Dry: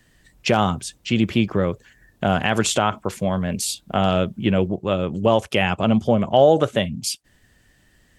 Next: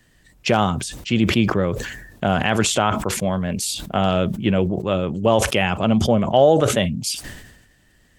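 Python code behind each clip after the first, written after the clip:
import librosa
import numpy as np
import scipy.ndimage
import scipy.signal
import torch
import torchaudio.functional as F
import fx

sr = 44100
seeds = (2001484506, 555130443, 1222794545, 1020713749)

y = fx.sustainer(x, sr, db_per_s=56.0)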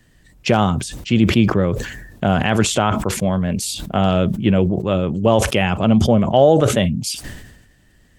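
y = fx.low_shelf(x, sr, hz=380.0, db=5.0)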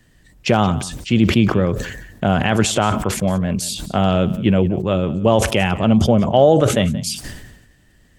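y = x + 10.0 ** (-17.5 / 20.0) * np.pad(x, (int(178 * sr / 1000.0), 0))[:len(x)]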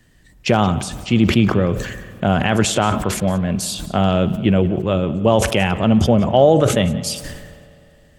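y = fx.rev_spring(x, sr, rt60_s=2.8, pass_ms=(51,), chirp_ms=65, drr_db=16.0)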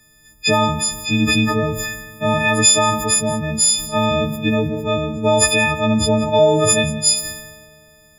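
y = fx.freq_snap(x, sr, grid_st=6)
y = F.gain(torch.from_numpy(y), -3.5).numpy()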